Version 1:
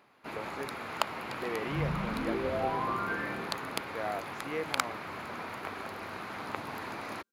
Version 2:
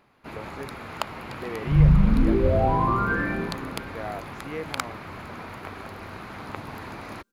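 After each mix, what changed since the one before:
second sound +9.0 dB; master: remove HPF 300 Hz 6 dB/oct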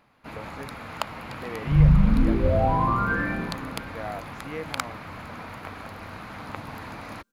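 master: add bell 380 Hz -11 dB 0.2 oct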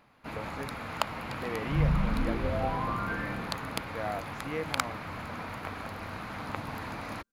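second sound -10.0 dB

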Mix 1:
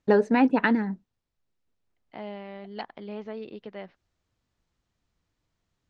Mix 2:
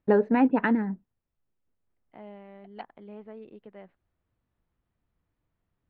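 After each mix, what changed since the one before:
second voice -6.0 dB; master: add air absorption 460 m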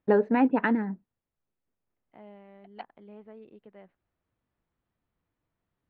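first voice: add low shelf 110 Hz -8.5 dB; second voice -4.0 dB

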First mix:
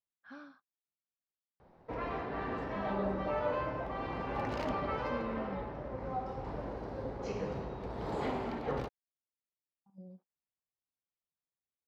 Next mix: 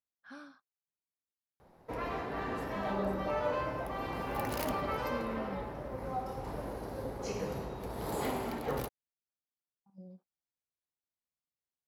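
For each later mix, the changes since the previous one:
master: remove air absorption 160 m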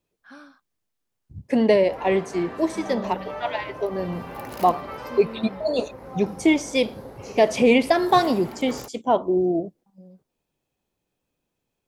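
first voice +4.5 dB; second voice: unmuted; master: add low shelf 89 Hz -7.5 dB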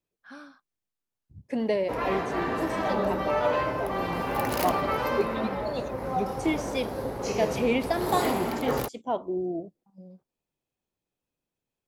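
second voice -9.0 dB; background +8.0 dB

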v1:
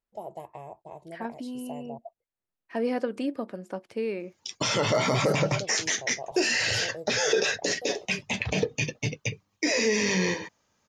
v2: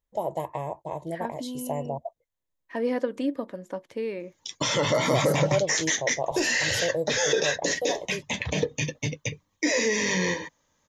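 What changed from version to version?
first voice +10.0 dB; master: add ripple EQ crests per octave 1.1, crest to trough 6 dB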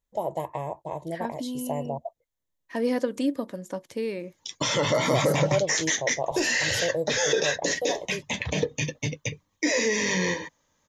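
second voice: add tone controls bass +5 dB, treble +12 dB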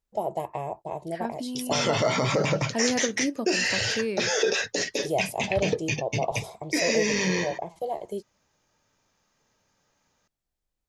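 background: entry -2.90 s; master: remove ripple EQ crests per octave 1.1, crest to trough 6 dB

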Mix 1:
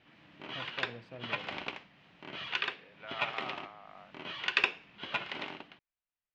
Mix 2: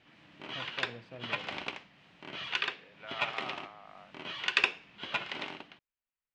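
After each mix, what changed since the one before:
background: remove air absorption 79 m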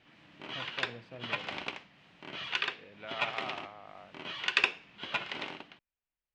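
second voice: remove band-pass 1300 Hz, Q 0.76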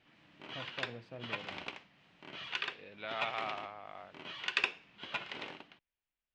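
second voice: remove air absorption 390 m; background -5.0 dB

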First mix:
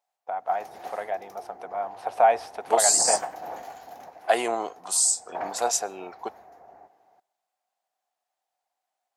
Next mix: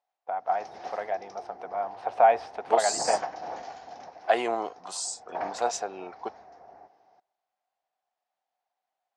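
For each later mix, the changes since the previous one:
second voice: send off; background: add synth low-pass 5500 Hz, resonance Q 4.1; master: add air absorption 120 m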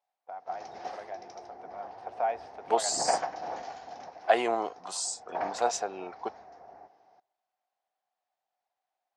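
first voice -10.5 dB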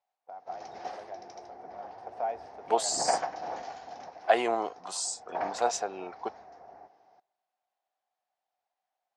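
first voice: add bell 2300 Hz -8 dB 2.7 oct

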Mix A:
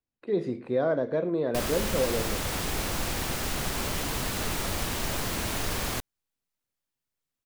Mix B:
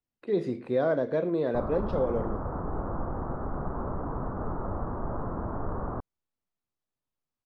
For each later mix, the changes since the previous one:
background: add steep low-pass 1300 Hz 48 dB/oct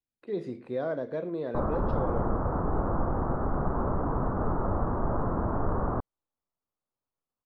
speech -5.5 dB; background +4.5 dB

